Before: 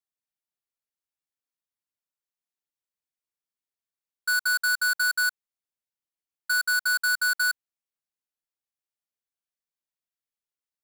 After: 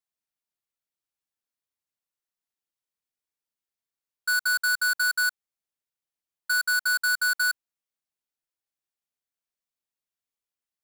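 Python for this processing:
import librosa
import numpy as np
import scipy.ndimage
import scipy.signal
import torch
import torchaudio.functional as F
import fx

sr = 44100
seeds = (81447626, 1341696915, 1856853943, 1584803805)

y = fx.highpass(x, sr, hz=fx.line((4.47, 78.0), (5.05, 190.0)), slope=6, at=(4.47, 5.05), fade=0.02)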